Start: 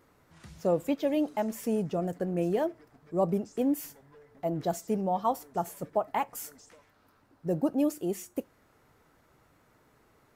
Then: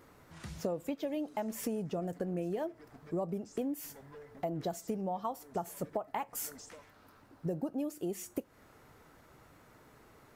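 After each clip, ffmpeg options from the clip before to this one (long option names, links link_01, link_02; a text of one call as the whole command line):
ffmpeg -i in.wav -af "acompressor=threshold=-37dB:ratio=10,volume=4.5dB" out.wav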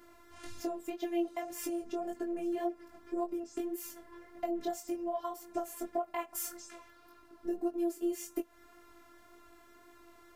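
ffmpeg -i in.wav -af "afftfilt=real='hypot(re,im)*cos(PI*b)':imag='0':win_size=512:overlap=0.75,flanger=delay=19.5:depth=3.2:speed=1.8,volume=7.5dB" out.wav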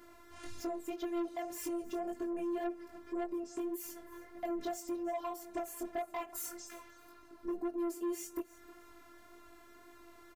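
ffmpeg -i in.wav -af "asoftclip=type=tanh:threshold=-32.5dB,aecho=1:1:313|626:0.106|0.0297,volume=1dB" out.wav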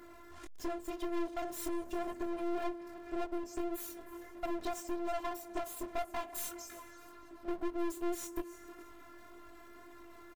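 ffmpeg -i in.wav -filter_complex "[0:a]asplit=2[link_01][link_02];[link_02]adelay=414,volume=-19dB,highshelf=frequency=4000:gain=-9.32[link_03];[link_01][link_03]amix=inputs=2:normalize=0,aeval=exprs='clip(val(0),-1,0.00299)':channel_layout=same,volume=4.5dB" out.wav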